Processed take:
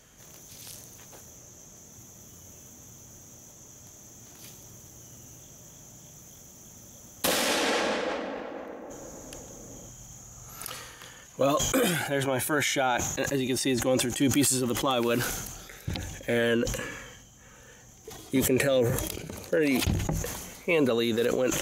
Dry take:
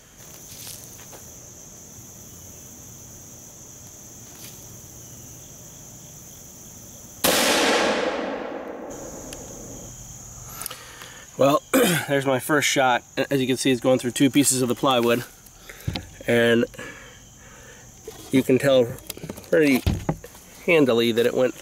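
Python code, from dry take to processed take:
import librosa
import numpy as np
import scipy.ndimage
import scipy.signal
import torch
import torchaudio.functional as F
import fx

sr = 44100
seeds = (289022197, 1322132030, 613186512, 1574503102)

y = fx.sustainer(x, sr, db_per_s=42.0)
y = F.gain(torch.from_numpy(y), -7.0).numpy()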